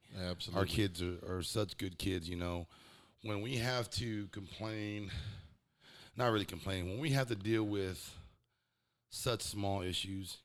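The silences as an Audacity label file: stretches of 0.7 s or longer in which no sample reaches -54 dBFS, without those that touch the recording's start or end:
8.280000	9.120000	silence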